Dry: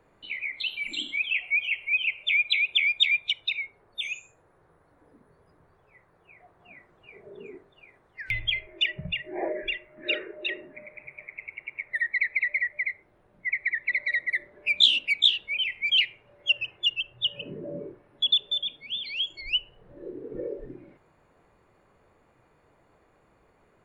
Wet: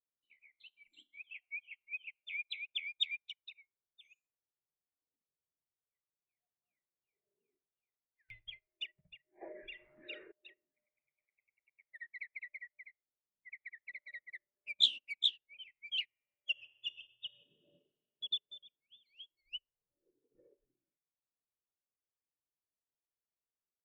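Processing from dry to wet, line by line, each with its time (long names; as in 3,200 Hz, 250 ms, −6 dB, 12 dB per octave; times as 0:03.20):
0:09.41–0:10.32: envelope flattener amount 70%
0:16.04–0:17.66: thrown reverb, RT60 2.8 s, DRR 2.5 dB
whole clip: expander for the loud parts 2.5 to 1, over −40 dBFS; level −7.5 dB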